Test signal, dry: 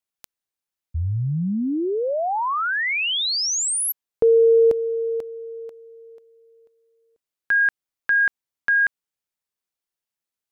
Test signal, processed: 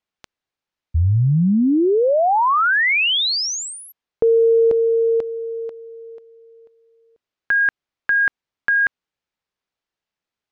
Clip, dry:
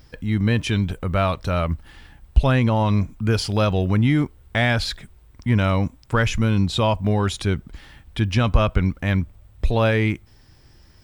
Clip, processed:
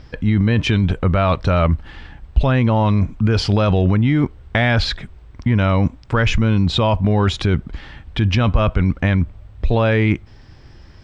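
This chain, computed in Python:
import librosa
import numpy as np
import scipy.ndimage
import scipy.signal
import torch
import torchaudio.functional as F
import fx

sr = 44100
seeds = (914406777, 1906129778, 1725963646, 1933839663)

p1 = fx.over_compress(x, sr, threshold_db=-22.0, ratio=-0.5)
p2 = x + (p1 * 10.0 ** (1.0 / 20.0))
y = fx.air_absorb(p2, sr, metres=140.0)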